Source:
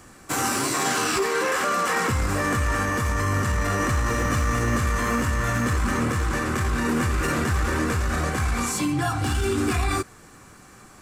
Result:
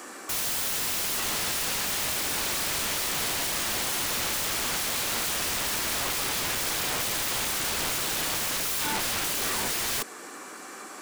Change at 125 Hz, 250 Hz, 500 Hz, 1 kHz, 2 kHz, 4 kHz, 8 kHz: -18.5, -14.0, -9.5, -8.0, -5.0, +5.5, +3.0 dB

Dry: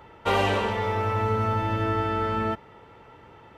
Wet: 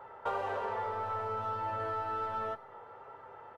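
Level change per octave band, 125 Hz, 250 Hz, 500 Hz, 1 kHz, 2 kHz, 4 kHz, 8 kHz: -20.0 dB, -21.0 dB, -11.0 dB, -7.5 dB, -13.0 dB, -19.5 dB, n/a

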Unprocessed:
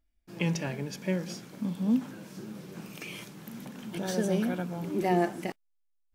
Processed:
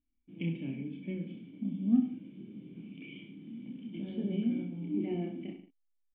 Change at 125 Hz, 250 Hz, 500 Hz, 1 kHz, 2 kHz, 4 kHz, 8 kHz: -5.5 dB, -1.5 dB, -10.5 dB, under -20 dB, -13.5 dB, -12.0 dB, under -35 dB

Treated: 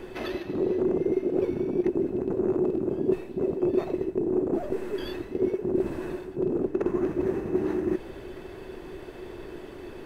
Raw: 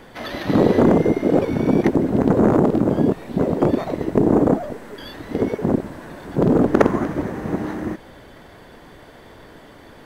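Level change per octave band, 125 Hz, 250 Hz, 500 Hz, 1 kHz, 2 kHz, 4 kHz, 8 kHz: -14.5 dB, -9.5 dB, -6.0 dB, -15.0 dB, -12.0 dB, -8.5 dB, n/a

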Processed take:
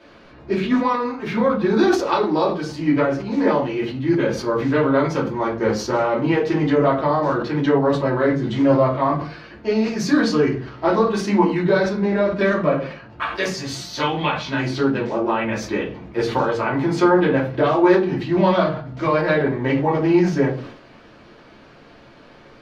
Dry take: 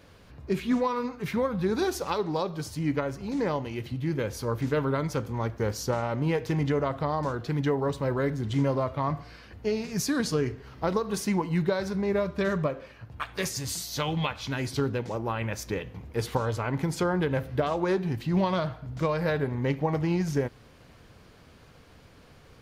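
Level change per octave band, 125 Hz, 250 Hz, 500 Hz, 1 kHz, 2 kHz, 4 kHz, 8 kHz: +4.0, +10.0, +10.0, +10.5, +10.5, +6.5, 0.0 dB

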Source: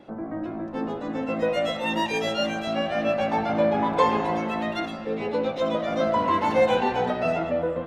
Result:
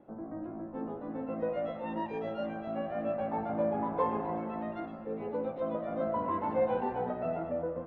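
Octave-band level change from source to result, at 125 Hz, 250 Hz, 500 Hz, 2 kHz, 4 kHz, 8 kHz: -8.5 dB, -8.5 dB, -8.5 dB, -17.5 dB, under -25 dB, n/a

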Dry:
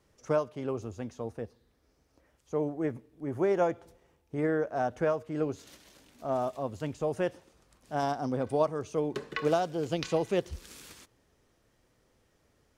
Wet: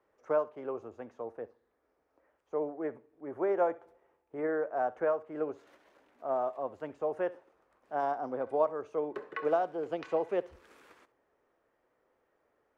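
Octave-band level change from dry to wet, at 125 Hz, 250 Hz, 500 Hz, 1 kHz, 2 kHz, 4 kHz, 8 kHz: -17.5 dB, -7.0 dB, -1.5 dB, -0.5 dB, -3.5 dB, under -10 dB, under -20 dB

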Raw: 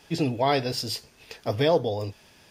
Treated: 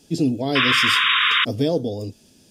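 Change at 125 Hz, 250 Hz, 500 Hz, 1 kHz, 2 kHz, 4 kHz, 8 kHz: +2.5, +7.5, -0.5, +5.0, +18.5, +14.0, +5.0 dB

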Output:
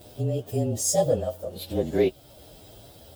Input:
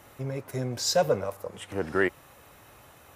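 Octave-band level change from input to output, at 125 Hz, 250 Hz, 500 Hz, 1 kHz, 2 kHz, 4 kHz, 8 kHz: +6.0, +4.5, +3.0, -2.5, -12.0, -4.5, +6.0 dB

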